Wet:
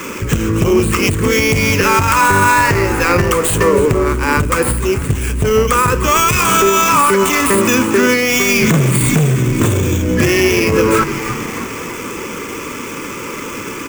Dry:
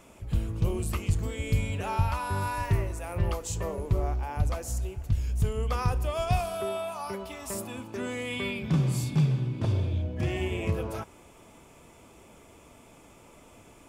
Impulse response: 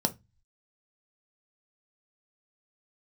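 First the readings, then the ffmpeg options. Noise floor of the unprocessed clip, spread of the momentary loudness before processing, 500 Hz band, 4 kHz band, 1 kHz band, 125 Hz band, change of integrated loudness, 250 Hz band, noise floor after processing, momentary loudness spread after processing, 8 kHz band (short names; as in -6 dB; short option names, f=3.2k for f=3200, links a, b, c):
-54 dBFS, 9 LU, +20.0 dB, +21.0 dB, +20.5 dB, +11.0 dB, +17.5 dB, +19.0 dB, -26 dBFS, 14 LU, +23.0 dB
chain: -filter_complex "[0:a]asuperstop=centerf=720:order=4:qfactor=1.3,lowshelf=f=95:g=-7,asplit=6[a][b][c][d][e][f];[b]adelay=305,afreqshift=-110,volume=-16.5dB[g];[c]adelay=610,afreqshift=-220,volume=-21.9dB[h];[d]adelay=915,afreqshift=-330,volume=-27.2dB[i];[e]adelay=1220,afreqshift=-440,volume=-32.6dB[j];[f]adelay=1525,afreqshift=-550,volume=-37.9dB[k];[a][g][h][i][j][k]amix=inputs=6:normalize=0,aresample=11025,asoftclip=type=tanh:threshold=-24.5dB,aresample=44100,acompressor=threshold=-37dB:ratio=6,acrossover=split=360|2800[l][m][n];[n]aeval=exprs='abs(val(0))':c=same[o];[l][m][o]amix=inputs=3:normalize=0,aemphasis=mode=production:type=bsi,alimiter=level_in=34.5dB:limit=-1dB:release=50:level=0:latency=1,volume=-1dB"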